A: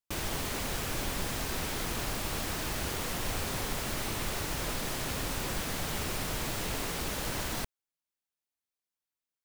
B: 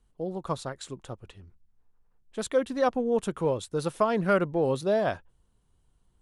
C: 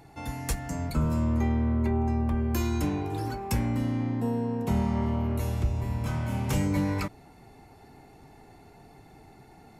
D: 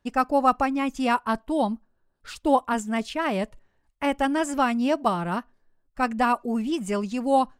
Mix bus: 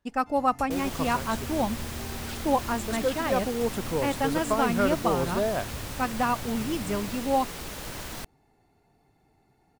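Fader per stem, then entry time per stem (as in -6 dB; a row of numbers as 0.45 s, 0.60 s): -3.0 dB, -2.5 dB, -13.5 dB, -4.0 dB; 0.60 s, 0.50 s, 0.10 s, 0.00 s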